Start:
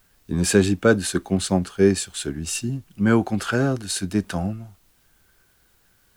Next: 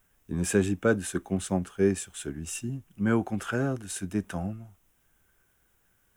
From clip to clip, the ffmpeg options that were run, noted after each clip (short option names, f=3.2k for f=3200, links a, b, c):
-af "equalizer=f=4.4k:w=3.4:g=-14,volume=-7dB"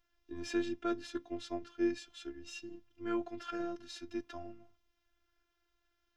-af "highshelf=f=6.7k:t=q:w=3:g=-13.5,bandreject=f=60:t=h:w=6,bandreject=f=120:t=h:w=6,bandreject=f=180:t=h:w=6,bandreject=f=240:t=h:w=6,afftfilt=real='hypot(re,im)*cos(PI*b)':imag='0':win_size=512:overlap=0.75,volume=-6dB"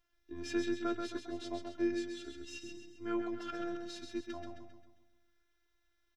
-af "aecho=1:1:133|266|399|532|665|798:0.531|0.25|0.117|0.0551|0.0259|0.0122,volume=-1dB"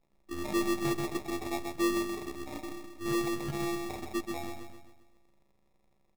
-af "acrusher=samples=29:mix=1:aa=0.000001,asoftclip=type=tanh:threshold=-29dB,volume=7dB"